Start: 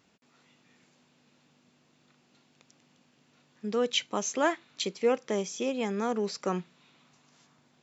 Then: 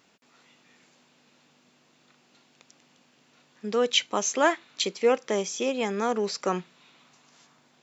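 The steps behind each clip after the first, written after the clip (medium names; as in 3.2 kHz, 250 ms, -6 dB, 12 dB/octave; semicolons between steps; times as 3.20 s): bass shelf 210 Hz -10.5 dB; trim +5.5 dB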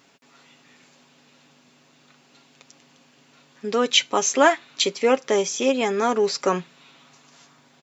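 comb 7.3 ms, depth 45%; trim +5 dB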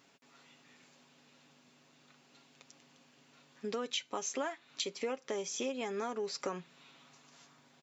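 compression 6:1, threshold -26 dBFS, peak gain reduction 15 dB; trim -8 dB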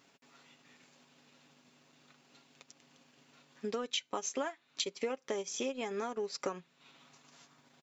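transient shaper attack +2 dB, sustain -8 dB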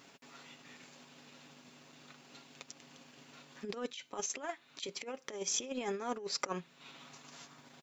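compressor with a negative ratio -40 dBFS, ratio -0.5; trim +2.5 dB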